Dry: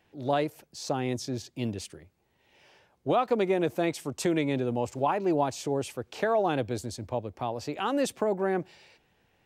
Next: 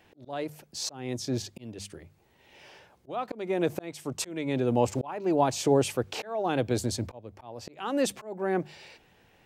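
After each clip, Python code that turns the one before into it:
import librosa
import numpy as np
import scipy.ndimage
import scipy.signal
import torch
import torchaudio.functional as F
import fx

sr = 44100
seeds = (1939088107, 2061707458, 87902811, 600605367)

y = fx.hum_notches(x, sr, base_hz=50, count=4)
y = fx.auto_swell(y, sr, attack_ms=654.0)
y = F.gain(torch.from_numpy(y), 7.0).numpy()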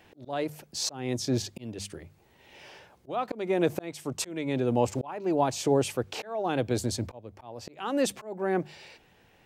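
y = fx.rider(x, sr, range_db=3, speed_s=2.0)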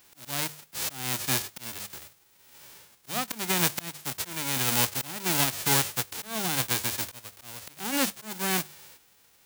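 y = fx.envelope_flatten(x, sr, power=0.1)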